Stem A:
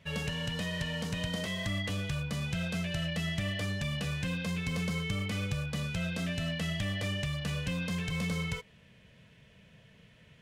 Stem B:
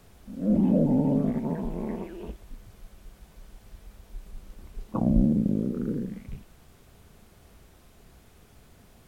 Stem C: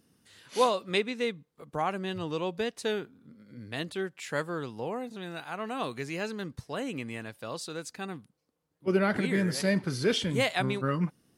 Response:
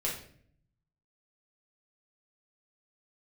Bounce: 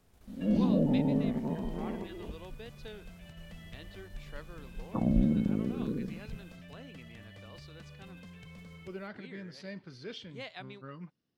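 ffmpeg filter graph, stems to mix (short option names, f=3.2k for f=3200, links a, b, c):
-filter_complex "[0:a]lowpass=f=3.6k:p=1,acompressor=threshold=-39dB:ratio=10,adelay=350,volume=-8dB[a];[1:a]agate=range=-8dB:threshold=-51dB:ratio=16:detection=peak,volume=-4.5dB[b];[2:a]highshelf=f=6.5k:t=q:w=1.5:g=-13,volume=-17dB,asplit=2[c][d];[d]apad=whole_len=474724[e];[a][e]sidechaincompress=threshold=-46dB:ratio=8:attack=43:release=1480[f];[f][b][c]amix=inputs=3:normalize=0"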